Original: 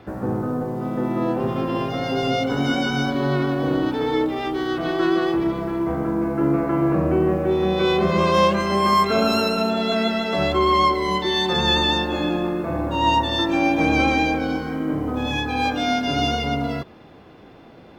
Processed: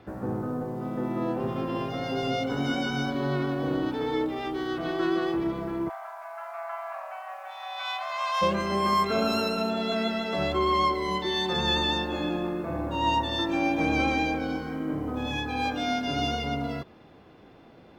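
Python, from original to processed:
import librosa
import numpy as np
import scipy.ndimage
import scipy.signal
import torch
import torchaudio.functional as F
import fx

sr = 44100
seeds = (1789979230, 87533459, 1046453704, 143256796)

y = fx.steep_highpass(x, sr, hz=630.0, slope=96, at=(5.88, 8.41), fade=0.02)
y = y * 10.0 ** (-6.5 / 20.0)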